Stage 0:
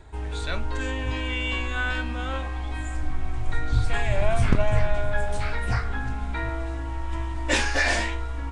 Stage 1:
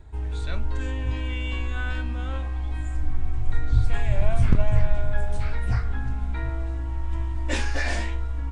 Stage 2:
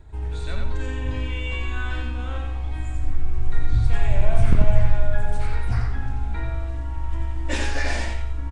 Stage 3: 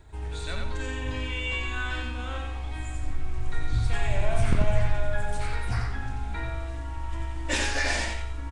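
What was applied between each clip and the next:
low-shelf EQ 230 Hz +10.5 dB; level −7 dB
repeating echo 89 ms, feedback 33%, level −3.5 dB
spectral tilt +1.5 dB per octave

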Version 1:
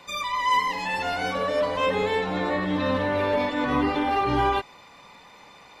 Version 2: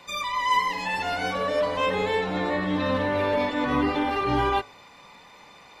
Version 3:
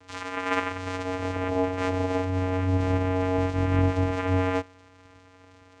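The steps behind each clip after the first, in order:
hum removal 52.83 Hz, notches 29
channel vocoder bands 4, square 92.5 Hz

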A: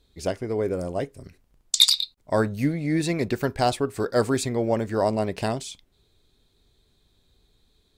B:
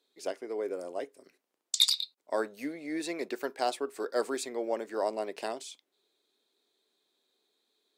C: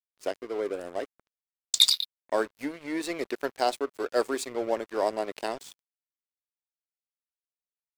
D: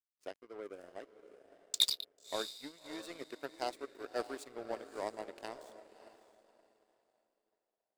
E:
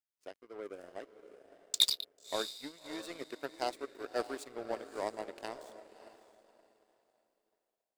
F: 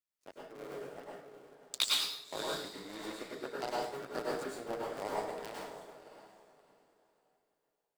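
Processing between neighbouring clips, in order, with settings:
high-pass filter 310 Hz 24 dB per octave; level −7.5 dB
dead-zone distortion −45 dBFS; level +5 dB
feedback delay with all-pass diffusion 600 ms, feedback 40%, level −8 dB; power curve on the samples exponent 1.4; level −7 dB
automatic gain control gain up to 6 dB; level −3.5 dB
sub-harmonics by changed cycles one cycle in 3, muted; dense smooth reverb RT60 0.66 s, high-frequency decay 0.75×, pre-delay 90 ms, DRR −4.5 dB; level −3.5 dB

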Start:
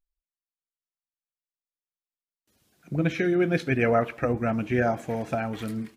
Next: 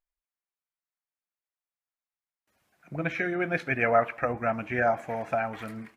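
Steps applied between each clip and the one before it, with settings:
flat-topped bell 1,200 Hz +10.5 dB 2.4 octaves
level −8 dB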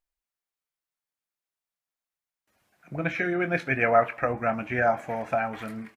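double-tracking delay 23 ms −12 dB
level +1.5 dB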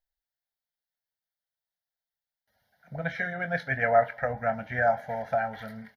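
phaser with its sweep stopped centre 1,700 Hz, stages 8

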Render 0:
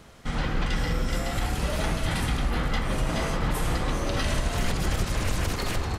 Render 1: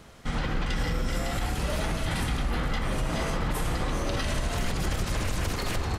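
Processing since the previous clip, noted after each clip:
brickwall limiter −19 dBFS, peak gain reduction 4 dB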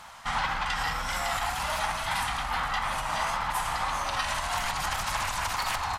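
tape wow and flutter 59 cents
low shelf with overshoot 600 Hz −13.5 dB, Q 3
speech leveller within 3 dB
level +2.5 dB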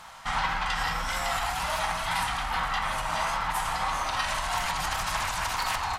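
convolution reverb, pre-delay 3 ms, DRR 7 dB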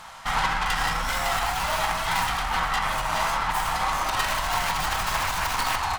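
stylus tracing distortion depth 0.11 ms
level +3.5 dB

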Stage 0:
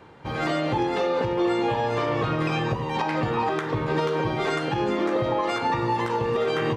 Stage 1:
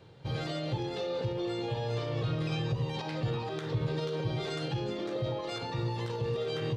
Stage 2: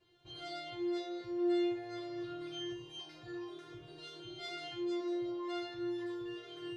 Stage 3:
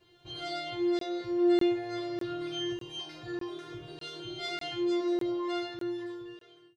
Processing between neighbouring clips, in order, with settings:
brickwall limiter −19.5 dBFS, peak gain reduction 6 dB; graphic EQ with 10 bands 125 Hz +10 dB, 250 Hz −6 dB, 500 Hz +3 dB, 1,000 Hz −8 dB, 2,000 Hz −5 dB, 4,000 Hz +8 dB; level −6.5 dB
tuned comb filter 350 Hz, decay 0.38 s, harmonics all, mix 100%; level +5 dB
fade-out on the ending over 1.41 s; regular buffer underruns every 0.60 s, samples 1,024, zero, from 0:00.99; level +7.5 dB

